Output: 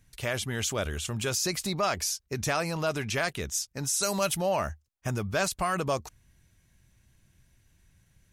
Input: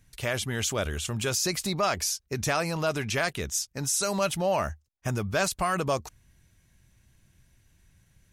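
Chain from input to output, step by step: 4.01–4.48 s: treble shelf 5.5 kHz -> 9.2 kHz +10 dB; trim -1.5 dB

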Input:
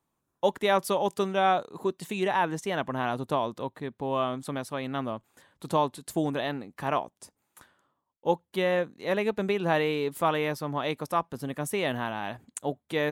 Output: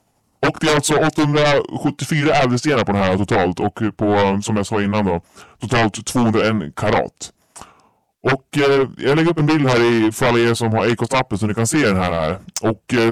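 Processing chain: rotating-head pitch shifter -4.5 st; sine folder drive 14 dB, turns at -10.5 dBFS

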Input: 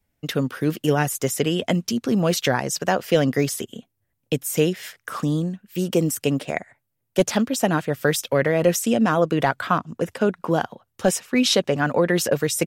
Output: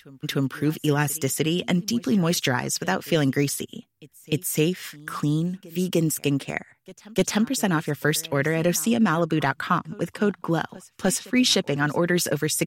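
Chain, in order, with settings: peaking EQ 610 Hz -8.5 dB 0.77 oct; on a send: reverse echo 301 ms -22.5 dB

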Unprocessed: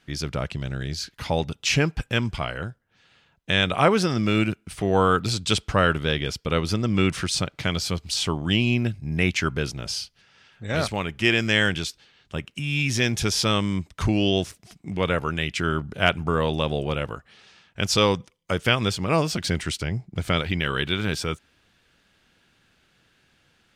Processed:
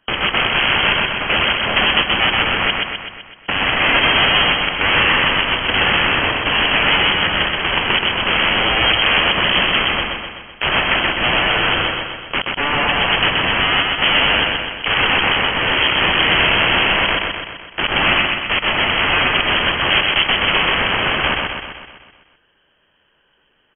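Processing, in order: spectral gate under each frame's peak -20 dB strong; peaking EQ 110 Hz -3 dB 1.6 oct; waveshaping leveller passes 5; in parallel at -1 dB: compressor with a negative ratio -14 dBFS, ratio -1; on the sum: integer overflow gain 13 dB; on a send: feedback delay 127 ms, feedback 57%, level -3 dB; on the sum: frequency inversion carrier 3.2 kHz; trim +3.5 dB

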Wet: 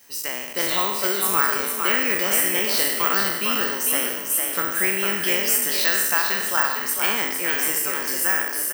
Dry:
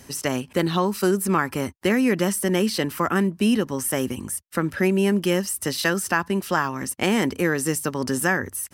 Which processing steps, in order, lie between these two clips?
spectral sustain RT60 0.99 s; high-pass 1.4 kHz 6 dB/octave; frequency-shifting echo 453 ms, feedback 37%, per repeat +42 Hz, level -5 dB; level rider gain up to 8.5 dB; careless resampling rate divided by 2×, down filtered, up zero stuff; trim -5 dB

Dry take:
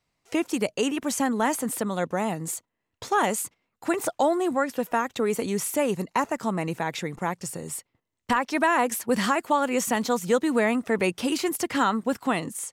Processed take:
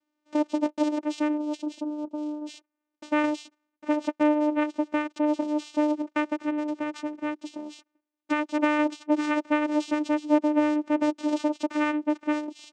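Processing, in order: 1.37–2.55 s: elliptic band-stop 390–5800 Hz; vocoder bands 4, saw 300 Hz

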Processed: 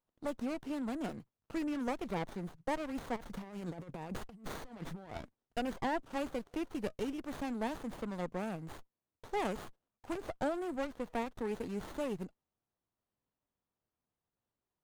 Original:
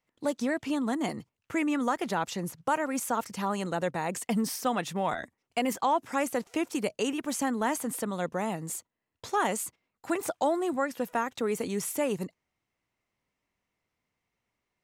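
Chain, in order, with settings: 3.16–5.18 s: compressor with a negative ratio -35 dBFS, ratio -0.5; sliding maximum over 17 samples; trim -7.5 dB

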